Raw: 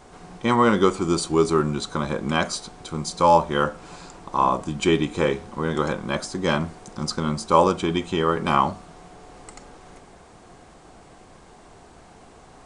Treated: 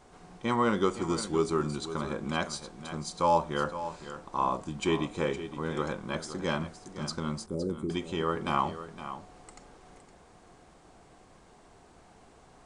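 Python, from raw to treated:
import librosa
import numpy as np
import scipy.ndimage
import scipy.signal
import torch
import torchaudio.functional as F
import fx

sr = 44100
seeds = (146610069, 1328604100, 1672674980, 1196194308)

p1 = fx.cheby2_bandstop(x, sr, low_hz=1100.0, high_hz=4100.0, order=4, stop_db=60, at=(7.46, 7.9))
p2 = p1 + fx.echo_single(p1, sr, ms=514, db=-12.0, dry=0)
y = p2 * 10.0 ** (-8.5 / 20.0)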